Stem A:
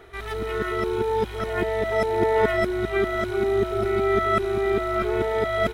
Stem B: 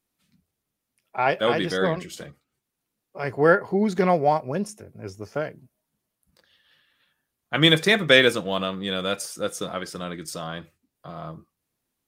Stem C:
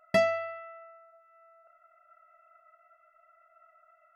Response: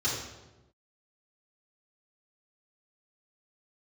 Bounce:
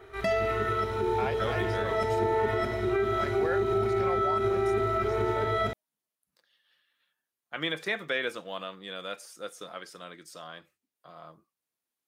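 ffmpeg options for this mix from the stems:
-filter_complex "[0:a]volume=-5.5dB,asplit=2[link_01][link_02];[link_02]volume=-9dB[link_03];[1:a]highpass=frequency=590:poles=1,acrossover=split=3000[link_04][link_05];[link_05]acompressor=threshold=-37dB:ratio=4:attack=1:release=60[link_06];[link_04][link_06]amix=inputs=2:normalize=0,volume=-8dB,asplit=2[link_07][link_08];[2:a]adelay=100,volume=2dB[link_09];[link_08]apad=whole_len=187718[link_10];[link_09][link_10]sidechaincompress=threshold=-33dB:ratio=8:attack=16:release=390[link_11];[3:a]atrim=start_sample=2205[link_12];[link_03][link_12]afir=irnorm=-1:irlink=0[link_13];[link_01][link_07][link_11][link_13]amix=inputs=4:normalize=0,alimiter=limit=-18.5dB:level=0:latency=1:release=92"

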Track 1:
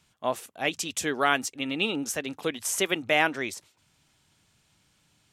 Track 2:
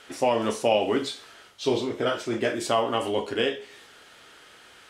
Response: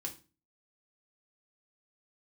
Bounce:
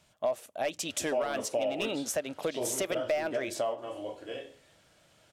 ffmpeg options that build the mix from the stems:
-filter_complex "[0:a]alimiter=limit=-13dB:level=0:latency=1:release=20,asoftclip=type=hard:threshold=-20.5dB,volume=-0.5dB,asplit=3[link_01][link_02][link_03];[link_02]volume=-23dB[link_04];[1:a]adelay=900,volume=-11.5dB,asplit=2[link_05][link_06];[link_06]volume=-5dB[link_07];[link_03]apad=whole_len=255461[link_08];[link_05][link_08]sidechaingate=range=-33dB:threshold=-58dB:ratio=16:detection=peak[link_09];[2:a]atrim=start_sample=2205[link_10];[link_04][link_07]amix=inputs=2:normalize=0[link_11];[link_11][link_10]afir=irnorm=-1:irlink=0[link_12];[link_01][link_09][link_12]amix=inputs=3:normalize=0,equalizer=frequency=610:width=3.5:gain=14,acompressor=threshold=-30dB:ratio=3"

